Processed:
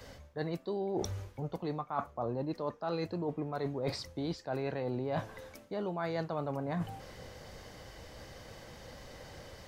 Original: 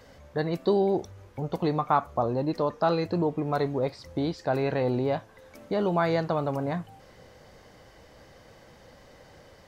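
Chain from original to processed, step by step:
reversed playback
downward compressor 12 to 1, threshold −39 dBFS, peak gain reduction 22 dB
reversed playback
multiband upward and downward expander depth 40%
level +6.5 dB

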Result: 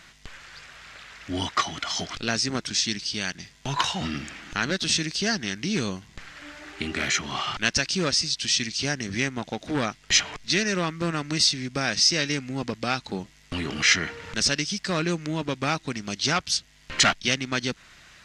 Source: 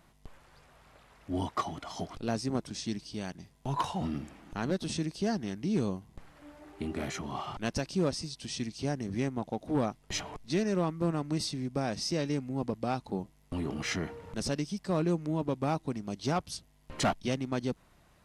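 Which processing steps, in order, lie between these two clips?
flat-topped bell 3,200 Hz +15 dB 2.8 octaves
in parallel at −3 dB: downward compressor, threshold −34 dBFS, peak gain reduction 17 dB

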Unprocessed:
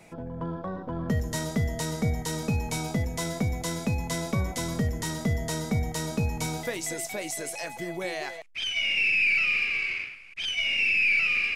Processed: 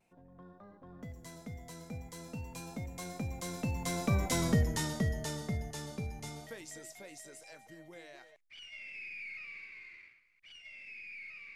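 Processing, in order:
source passing by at 0:04.44, 21 m/s, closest 8 metres
pitch vibrato 0.47 Hz 17 cents

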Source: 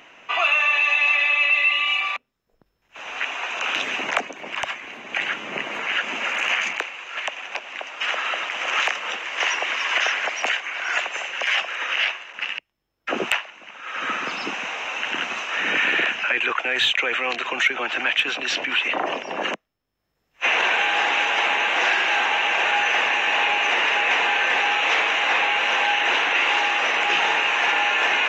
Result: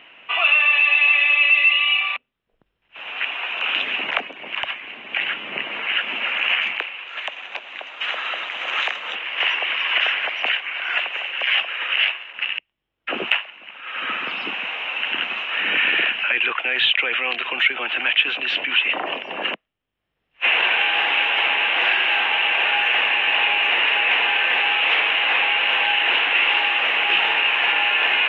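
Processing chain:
high shelf with overshoot 4,400 Hz −13 dB, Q 3, from 0:07.08 −6.5 dB, from 0:09.15 −13.5 dB
level −3 dB

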